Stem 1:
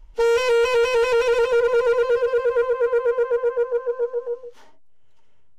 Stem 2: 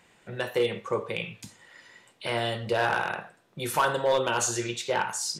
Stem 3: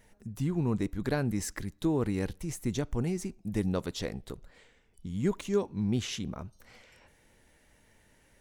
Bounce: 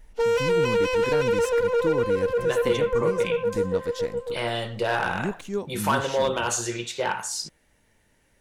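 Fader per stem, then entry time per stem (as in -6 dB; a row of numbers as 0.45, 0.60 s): -4.0, +0.5, -1.0 dB; 0.00, 2.10, 0.00 s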